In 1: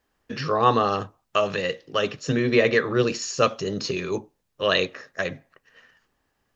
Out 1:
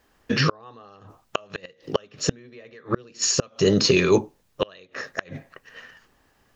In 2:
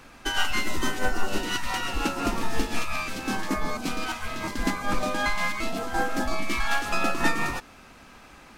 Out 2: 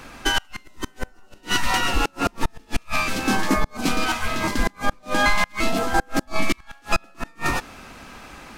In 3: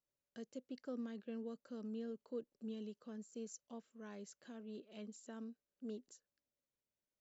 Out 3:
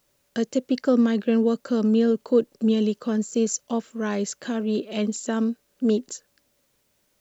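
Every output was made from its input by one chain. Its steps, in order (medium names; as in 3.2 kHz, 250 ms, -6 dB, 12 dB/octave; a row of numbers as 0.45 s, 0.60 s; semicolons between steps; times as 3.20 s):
in parallel at +1.5 dB: peak limiter -16.5 dBFS; on the sum: inverted gate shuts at -9 dBFS, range -33 dB; normalise loudness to -24 LUFS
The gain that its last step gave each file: +3.0 dB, +1.0 dB, +18.5 dB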